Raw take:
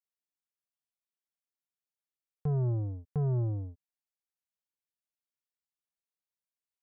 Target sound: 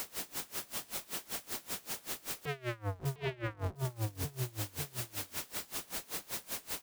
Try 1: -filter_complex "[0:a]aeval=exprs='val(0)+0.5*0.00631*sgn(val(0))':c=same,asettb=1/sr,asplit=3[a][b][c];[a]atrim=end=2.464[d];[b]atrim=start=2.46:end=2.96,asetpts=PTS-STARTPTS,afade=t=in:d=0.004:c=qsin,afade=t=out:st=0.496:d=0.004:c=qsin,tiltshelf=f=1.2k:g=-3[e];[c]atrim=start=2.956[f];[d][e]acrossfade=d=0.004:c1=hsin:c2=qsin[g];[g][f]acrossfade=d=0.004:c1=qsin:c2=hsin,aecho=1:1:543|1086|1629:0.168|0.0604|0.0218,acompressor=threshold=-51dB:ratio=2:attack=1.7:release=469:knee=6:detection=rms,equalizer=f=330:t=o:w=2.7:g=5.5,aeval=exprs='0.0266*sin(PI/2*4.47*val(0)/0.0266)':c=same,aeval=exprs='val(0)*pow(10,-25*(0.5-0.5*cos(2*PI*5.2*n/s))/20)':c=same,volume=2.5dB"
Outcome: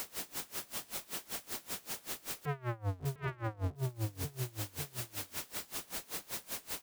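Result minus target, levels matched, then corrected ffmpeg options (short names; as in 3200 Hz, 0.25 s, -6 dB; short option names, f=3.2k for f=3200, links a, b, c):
compressor: peak gain reduction +3 dB
-filter_complex "[0:a]aeval=exprs='val(0)+0.5*0.00631*sgn(val(0))':c=same,asettb=1/sr,asplit=3[a][b][c];[a]atrim=end=2.464[d];[b]atrim=start=2.46:end=2.96,asetpts=PTS-STARTPTS,afade=t=in:d=0.004:c=qsin,afade=t=out:st=0.496:d=0.004:c=qsin,tiltshelf=f=1.2k:g=-3[e];[c]atrim=start=2.956[f];[d][e]acrossfade=d=0.004:c1=hsin:c2=qsin[g];[g][f]acrossfade=d=0.004:c1=qsin:c2=hsin,aecho=1:1:543|1086|1629:0.168|0.0604|0.0218,acompressor=threshold=-44.5dB:ratio=2:attack=1.7:release=469:knee=6:detection=rms,equalizer=f=330:t=o:w=2.7:g=5.5,aeval=exprs='0.0266*sin(PI/2*4.47*val(0)/0.0266)':c=same,aeval=exprs='val(0)*pow(10,-25*(0.5-0.5*cos(2*PI*5.2*n/s))/20)':c=same,volume=2.5dB"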